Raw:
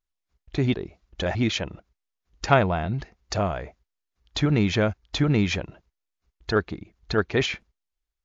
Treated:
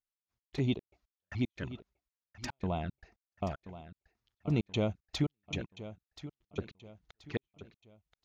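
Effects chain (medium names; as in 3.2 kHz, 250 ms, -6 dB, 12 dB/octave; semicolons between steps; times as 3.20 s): high-pass 79 Hz 6 dB/octave; peaking EQ 460 Hz -2.5 dB 0.66 oct; touch-sensitive flanger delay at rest 8.8 ms, full sweep at -21 dBFS; trance gate "x.x.xx.x..x.xxxx" 114 bpm -60 dB; on a send: feedback delay 1029 ms, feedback 39%, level -14 dB; on the sum: trim -6 dB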